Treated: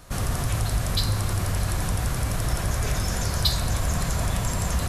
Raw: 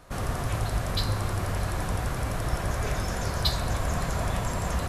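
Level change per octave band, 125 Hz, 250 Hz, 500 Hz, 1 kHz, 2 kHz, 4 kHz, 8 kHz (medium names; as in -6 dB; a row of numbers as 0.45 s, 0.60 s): +4.0 dB, +2.5 dB, -1.0 dB, -0.5 dB, +1.5 dB, +4.5 dB, +7.5 dB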